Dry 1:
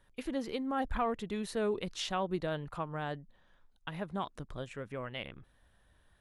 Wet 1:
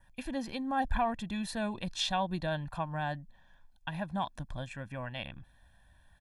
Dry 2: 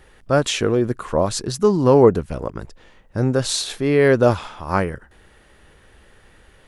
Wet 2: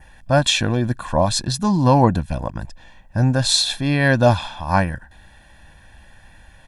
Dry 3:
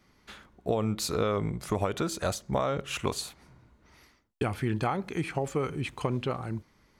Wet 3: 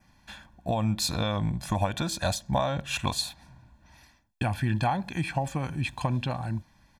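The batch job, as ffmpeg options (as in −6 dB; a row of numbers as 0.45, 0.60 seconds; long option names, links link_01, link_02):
-af "aecho=1:1:1.2:0.87,adynamicequalizer=threshold=0.00316:dfrequency=3800:dqfactor=4.3:tfrequency=3800:tqfactor=4.3:attack=5:release=100:ratio=0.375:range=4:mode=boostabove:tftype=bell"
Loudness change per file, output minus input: +1.5, +0.5, +2.0 LU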